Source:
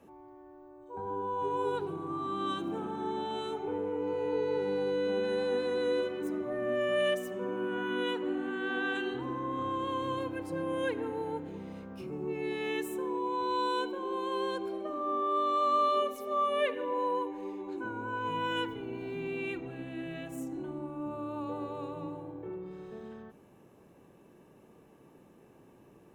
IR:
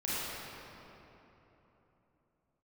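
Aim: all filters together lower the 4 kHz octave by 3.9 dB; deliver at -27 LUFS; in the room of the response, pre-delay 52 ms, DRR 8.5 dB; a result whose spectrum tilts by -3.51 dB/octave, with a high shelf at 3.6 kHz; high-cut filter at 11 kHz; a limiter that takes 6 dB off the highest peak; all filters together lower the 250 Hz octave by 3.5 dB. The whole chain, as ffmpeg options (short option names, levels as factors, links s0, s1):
-filter_complex "[0:a]lowpass=11000,equalizer=f=250:t=o:g=-5,highshelf=f=3600:g=3.5,equalizer=f=4000:t=o:g=-8,alimiter=level_in=1.19:limit=0.0631:level=0:latency=1,volume=0.841,asplit=2[s0][s1];[1:a]atrim=start_sample=2205,adelay=52[s2];[s1][s2]afir=irnorm=-1:irlink=0,volume=0.168[s3];[s0][s3]amix=inputs=2:normalize=0,volume=2.51"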